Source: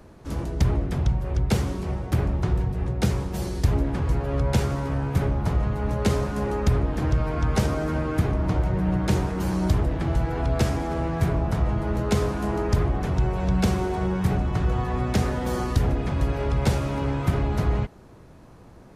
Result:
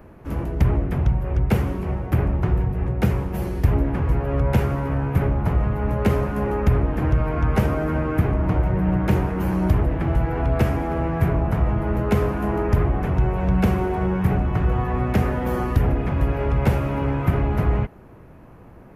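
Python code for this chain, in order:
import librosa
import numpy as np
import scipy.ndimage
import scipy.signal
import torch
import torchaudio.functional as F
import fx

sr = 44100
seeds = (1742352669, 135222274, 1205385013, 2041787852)

y = fx.band_shelf(x, sr, hz=5700.0, db=-13.0, octaves=1.7)
y = y * librosa.db_to_amplitude(3.0)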